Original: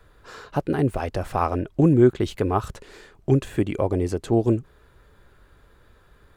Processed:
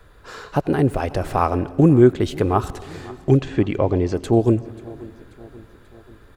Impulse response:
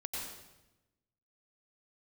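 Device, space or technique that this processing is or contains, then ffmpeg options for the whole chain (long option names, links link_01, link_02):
compressed reverb return: -filter_complex "[0:a]asettb=1/sr,asplit=3[link_01][link_02][link_03];[link_01]atrim=end=3.374[link_04];[link_02]atrim=start=3.37:end=4.14,asetpts=PTS-STARTPTS,afade=type=in:duration=0.004:curve=qsin,afade=type=out:start_time=0.766:duration=0.004:curve=qsin,lowpass=frequency=5800:width=0.5412,lowpass=frequency=5800:width=1.3066[link_05];[link_03]atrim=start=4.136[link_06];[link_04][link_05]acrossfade=duration=0.004:curve1=hsin:curve2=qsin[link_07];[link_07][link_06]acrossfade=duration=0.004:curve1=qsin:curve2=hsin,aecho=1:1:536|1072|1608|2144:0.0794|0.0429|0.0232|0.0125,asplit=2[link_08][link_09];[1:a]atrim=start_sample=2205[link_10];[link_09][link_10]afir=irnorm=-1:irlink=0,acompressor=threshold=-26dB:ratio=6,volume=-10dB[link_11];[link_08][link_11]amix=inputs=2:normalize=0,volume=3dB"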